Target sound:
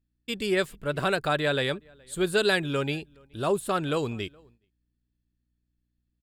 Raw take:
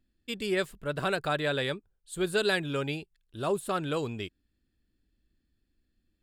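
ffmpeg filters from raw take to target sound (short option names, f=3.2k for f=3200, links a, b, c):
-filter_complex "[0:a]asplit=2[a][b];[b]adelay=419.8,volume=-28dB,highshelf=f=4k:g=-9.45[c];[a][c]amix=inputs=2:normalize=0,aeval=exprs='val(0)+0.000501*(sin(2*PI*60*n/s)+sin(2*PI*2*60*n/s)/2+sin(2*PI*3*60*n/s)/3+sin(2*PI*4*60*n/s)/4+sin(2*PI*5*60*n/s)/5)':c=same,agate=range=-14dB:threshold=-59dB:ratio=16:detection=peak,volume=3.5dB"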